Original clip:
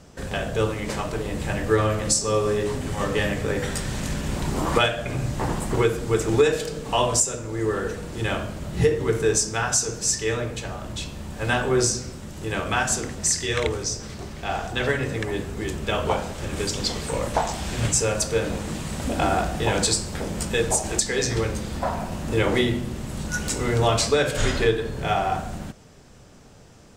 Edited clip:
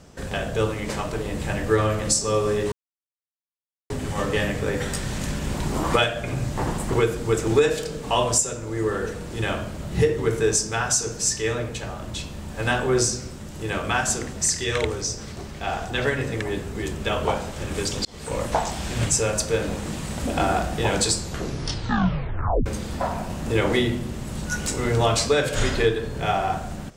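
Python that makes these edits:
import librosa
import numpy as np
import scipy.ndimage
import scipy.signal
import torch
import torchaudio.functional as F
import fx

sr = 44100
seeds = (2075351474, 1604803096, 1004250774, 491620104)

y = fx.edit(x, sr, fx.insert_silence(at_s=2.72, length_s=1.18),
    fx.fade_in_span(start_s=16.87, length_s=0.34),
    fx.tape_stop(start_s=19.98, length_s=1.5), tone=tone)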